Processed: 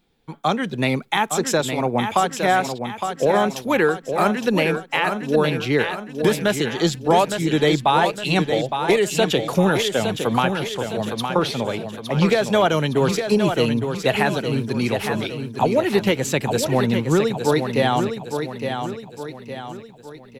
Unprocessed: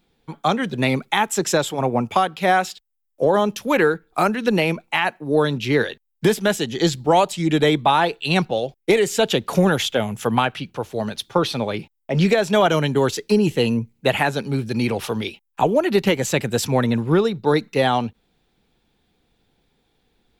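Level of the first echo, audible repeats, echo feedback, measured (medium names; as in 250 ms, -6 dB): -7.0 dB, 5, 46%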